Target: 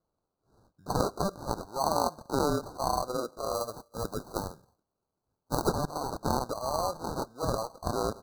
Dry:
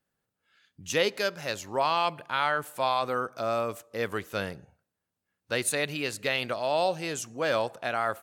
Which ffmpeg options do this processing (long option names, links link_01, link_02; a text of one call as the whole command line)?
ffmpeg -i in.wav -af "tiltshelf=frequency=650:gain=-7.5,acrusher=samples=25:mix=1:aa=0.000001,asetnsamples=nb_out_samples=441:pad=0,asendcmd='3.54 highshelf g 2.5;5.68 highshelf g -5',highshelf=frequency=8000:gain=-5,asuperstop=centerf=2500:order=20:qfactor=1.2,volume=-4.5dB" out.wav